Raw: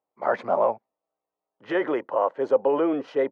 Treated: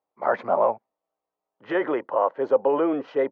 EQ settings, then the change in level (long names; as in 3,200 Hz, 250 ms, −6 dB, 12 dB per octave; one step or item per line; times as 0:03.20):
high-frequency loss of the air 110 metres
parametric band 1,100 Hz +2.5 dB 1.6 octaves
0.0 dB